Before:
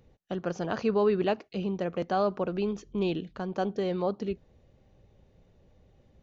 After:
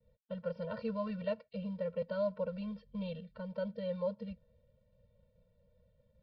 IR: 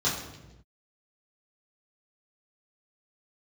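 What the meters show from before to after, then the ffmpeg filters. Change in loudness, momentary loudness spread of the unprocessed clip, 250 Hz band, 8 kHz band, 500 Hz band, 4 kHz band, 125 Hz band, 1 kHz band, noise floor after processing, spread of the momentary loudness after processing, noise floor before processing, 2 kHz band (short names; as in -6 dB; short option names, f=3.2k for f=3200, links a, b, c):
-9.0 dB, 9 LU, -9.0 dB, n/a, -8.5 dB, -12.0 dB, -7.5 dB, -15.5 dB, -74 dBFS, 8 LU, -64 dBFS, -11.0 dB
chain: -af "acrusher=bits=7:mode=log:mix=0:aa=0.000001,aresample=11025,aresample=44100,agate=range=-33dB:threshold=-58dB:ratio=3:detection=peak,equalizer=f=460:w=1.3:g=6.5,afftfilt=real='re*eq(mod(floor(b*sr/1024/220),2),0)':imag='im*eq(mod(floor(b*sr/1024/220),2),0)':win_size=1024:overlap=0.75,volume=-8.5dB"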